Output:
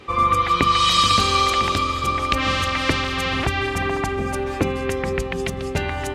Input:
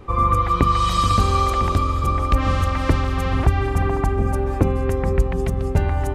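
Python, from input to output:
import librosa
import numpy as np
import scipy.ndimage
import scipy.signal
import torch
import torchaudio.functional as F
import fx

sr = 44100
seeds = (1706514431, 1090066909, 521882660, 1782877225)

y = fx.weighting(x, sr, curve='D')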